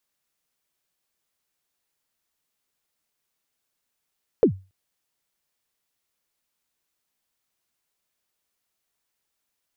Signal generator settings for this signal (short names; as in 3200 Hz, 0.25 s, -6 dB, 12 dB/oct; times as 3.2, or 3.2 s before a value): kick drum length 0.28 s, from 520 Hz, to 95 Hz, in 91 ms, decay 0.29 s, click off, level -8.5 dB